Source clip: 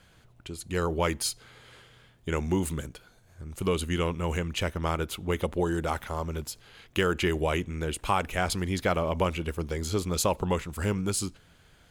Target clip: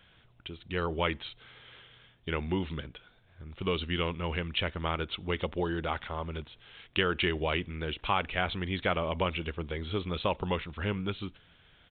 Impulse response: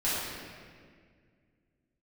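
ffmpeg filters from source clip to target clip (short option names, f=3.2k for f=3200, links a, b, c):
-af "crystalizer=i=4.5:c=0,aresample=8000,aresample=44100,volume=-4.5dB"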